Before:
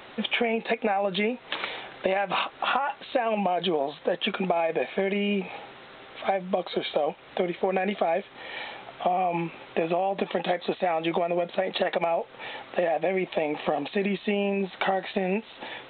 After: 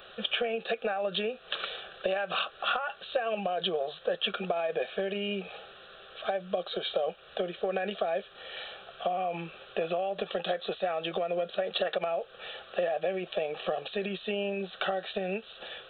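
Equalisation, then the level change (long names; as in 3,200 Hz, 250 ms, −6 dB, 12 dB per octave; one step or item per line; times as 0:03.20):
parametric band 120 Hz −10 dB 0.6 octaves
parametric band 710 Hz −4 dB 1.1 octaves
phaser with its sweep stopped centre 1,400 Hz, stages 8
0.0 dB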